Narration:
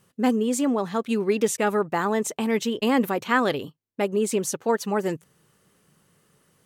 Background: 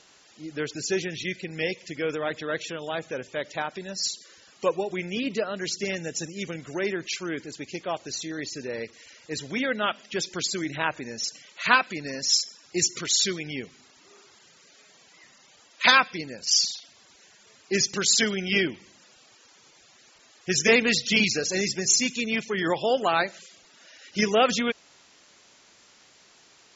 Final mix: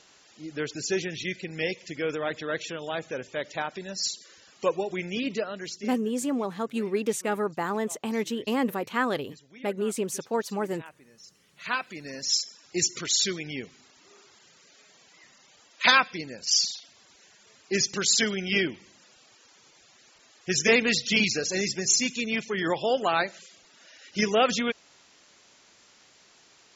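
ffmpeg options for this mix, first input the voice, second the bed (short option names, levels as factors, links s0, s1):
-filter_complex "[0:a]adelay=5650,volume=0.562[s0];[1:a]volume=7.94,afade=t=out:st=5.29:d=0.72:silence=0.105925,afade=t=in:st=11.33:d=1.26:silence=0.112202[s1];[s0][s1]amix=inputs=2:normalize=0"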